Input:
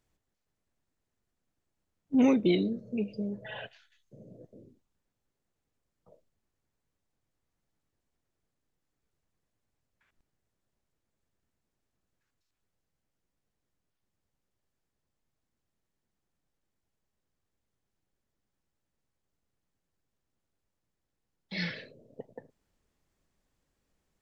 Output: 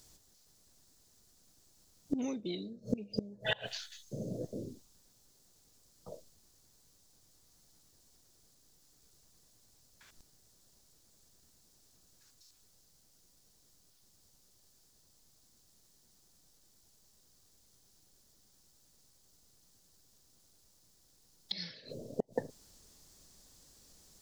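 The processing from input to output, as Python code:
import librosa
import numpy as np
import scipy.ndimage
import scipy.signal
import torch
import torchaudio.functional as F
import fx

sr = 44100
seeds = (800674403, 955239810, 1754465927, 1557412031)

y = fx.high_shelf_res(x, sr, hz=3400.0, db=11.5, q=1.5)
y = fx.gate_flip(y, sr, shuts_db=-30.0, range_db=-26)
y = y * 10.0 ** (12.0 / 20.0)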